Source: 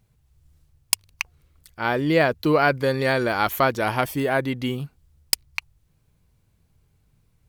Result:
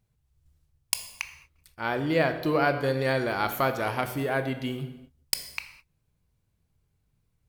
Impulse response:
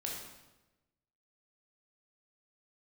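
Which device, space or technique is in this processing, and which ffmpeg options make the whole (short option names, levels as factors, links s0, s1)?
keyed gated reverb: -filter_complex "[0:a]asplit=3[s0][s1][s2];[1:a]atrim=start_sample=2205[s3];[s1][s3]afir=irnorm=-1:irlink=0[s4];[s2]apad=whole_len=330086[s5];[s4][s5]sidechaingate=range=0.0224:threshold=0.002:ratio=16:detection=peak,volume=0.631[s6];[s0][s6]amix=inputs=2:normalize=0,volume=0.355"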